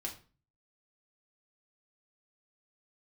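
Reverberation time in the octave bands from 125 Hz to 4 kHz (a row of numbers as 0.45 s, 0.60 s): 0.65 s, 0.50 s, 0.40 s, 0.35 s, 0.35 s, 0.30 s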